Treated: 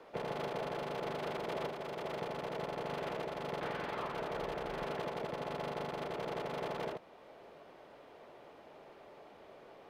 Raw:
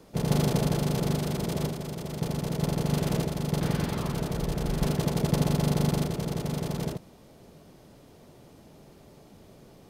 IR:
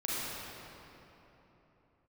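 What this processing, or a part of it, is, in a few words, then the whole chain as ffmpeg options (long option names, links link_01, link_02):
DJ mixer with the lows and highs turned down: -filter_complex "[0:a]acrossover=split=420 3100:gain=0.0794 1 0.0794[link_01][link_02][link_03];[link_01][link_02][link_03]amix=inputs=3:normalize=0,alimiter=level_in=8dB:limit=-24dB:level=0:latency=1:release=405,volume=-8dB,volume=4dB"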